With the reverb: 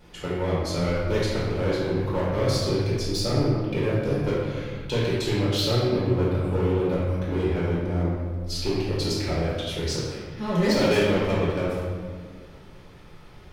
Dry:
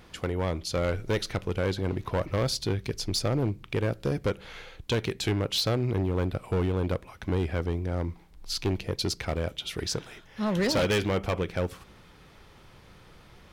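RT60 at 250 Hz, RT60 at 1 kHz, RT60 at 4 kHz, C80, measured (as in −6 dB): 2.4 s, 1.6 s, 1.1 s, 1.0 dB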